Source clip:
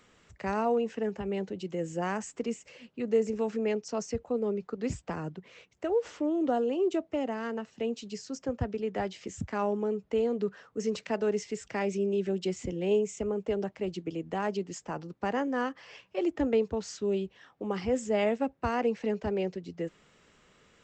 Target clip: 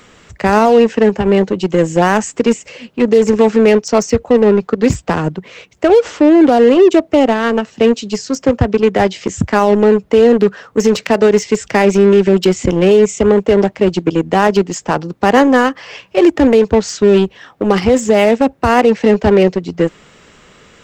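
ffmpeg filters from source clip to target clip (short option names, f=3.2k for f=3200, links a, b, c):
-filter_complex "[0:a]asplit=2[a][b];[b]acrusher=bits=4:mix=0:aa=0.5,volume=-7dB[c];[a][c]amix=inputs=2:normalize=0,alimiter=level_in=19dB:limit=-1dB:release=50:level=0:latency=1,volume=-1dB"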